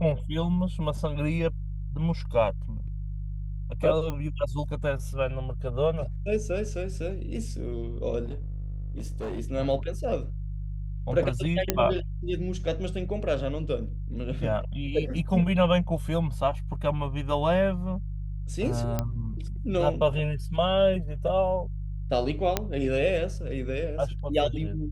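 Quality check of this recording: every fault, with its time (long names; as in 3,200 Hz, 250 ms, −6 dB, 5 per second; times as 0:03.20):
mains hum 50 Hz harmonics 3 −33 dBFS
0:04.10: click −19 dBFS
0:08.24–0:09.40: clipping −29 dBFS
0:11.70: click −6 dBFS
0:18.99: click −13 dBFS
0:22.57: click −8 dBFS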